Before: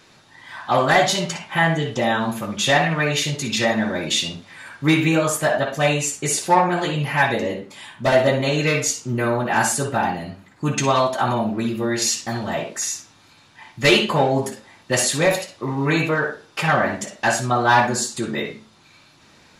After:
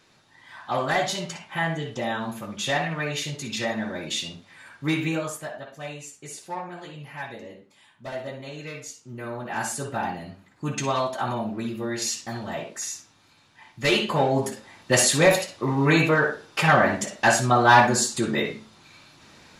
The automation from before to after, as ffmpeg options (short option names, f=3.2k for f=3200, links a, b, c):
-af "volume=10dB,afade=t=out:st=5.09:d=0.43:silence=0.334965,afade=t=in:st=9:d=1.05:silence=0.298538,afade=t=in:st=13.88:d=1.03:silence=0.421697"